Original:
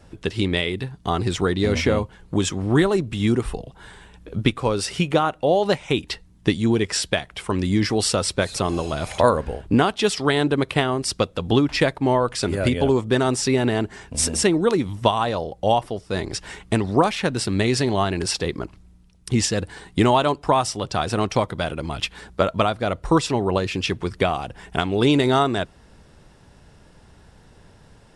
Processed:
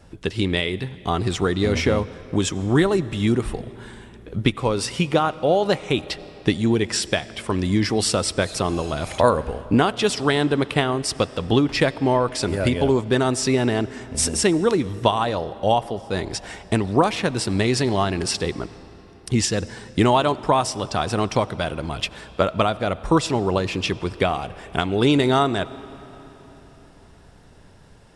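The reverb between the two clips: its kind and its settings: digital reverb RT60 4.1 s, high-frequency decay 0.7×, pre-delay 50 ms, DRR 17.5 dB

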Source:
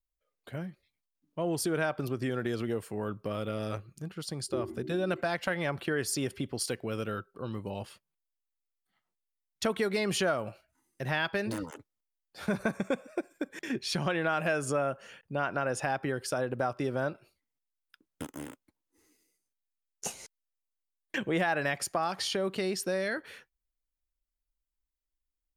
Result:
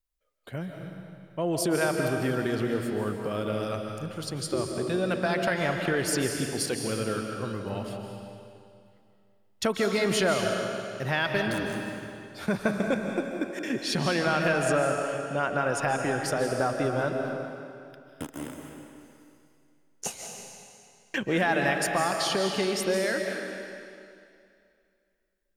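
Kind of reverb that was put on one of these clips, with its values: digital reverb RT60 2.4 s, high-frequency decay 0.95×, pre-delay 0.11 s, DRR 2.5 dB; gain +3 dB

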